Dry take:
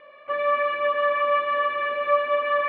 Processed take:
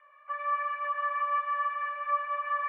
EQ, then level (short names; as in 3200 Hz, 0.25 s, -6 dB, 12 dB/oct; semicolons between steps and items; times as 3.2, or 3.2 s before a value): HPF 1000 Hz 24 dB/oct; LPF 1400 Hz 12 dB/oct; air absorption 120 m; -1.5 dB